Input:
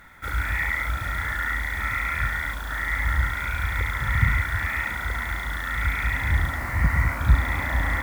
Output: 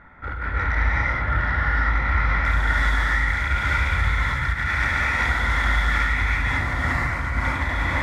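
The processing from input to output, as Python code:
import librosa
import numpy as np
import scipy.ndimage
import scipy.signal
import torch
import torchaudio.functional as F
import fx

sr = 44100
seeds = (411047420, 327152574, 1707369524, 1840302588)

y = fx.lowpass(x, sr, hz=fx.steps((0.0, 1500.0), (2.45, 6500.0)), slope=12)
y = fx.over_compress(y, sr, threshold_db=-28.0, ratio=-1.0)
y = 10.0 ** (-18.0 / 20.0) * np.tanh(y / 10.0 ** (-18.0 / 20.0))
y = fx.rev_gated(y, sr, seeds[0], gate_ms=400, shape='rising', drr_db=-5.5)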